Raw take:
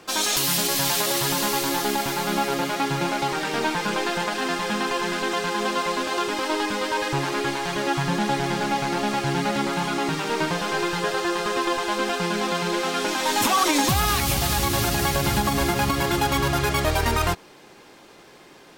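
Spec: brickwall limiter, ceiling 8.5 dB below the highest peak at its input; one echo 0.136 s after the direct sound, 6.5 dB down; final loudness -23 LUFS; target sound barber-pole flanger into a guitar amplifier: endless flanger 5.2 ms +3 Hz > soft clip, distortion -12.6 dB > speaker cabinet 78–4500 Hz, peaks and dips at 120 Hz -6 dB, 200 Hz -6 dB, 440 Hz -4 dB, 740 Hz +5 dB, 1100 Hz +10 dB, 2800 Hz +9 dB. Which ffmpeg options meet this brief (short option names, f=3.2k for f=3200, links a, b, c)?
-filter_complex "[0:a]alimiter=limit=-17dB:level=0:latency=1,aecho=1:1:136:0.473,asplit=2[a][b];[b]adelay=5.2,afreqshift=3[c];[a][c]amix=inputs=2:normalize=1,asoftclip=threshold=-27dB,highpass=78,equalizer=f=120:t=q:w=4:g=-6,equalizer=f=200:t=q:w=4:g=-6,equalizer=f=440:t=q:w=4:g=-4,equalizer=f=740:t=q:w=4:g=5,equalizer=f=1.1k:t=q:w=4:g=10,equalizer=f=2.8k:t=q:w=4:g=9,lowpass=f=4.5k:w=0.5412,lowpass=f=4.5k:w=1.3066,volume=5.5dB"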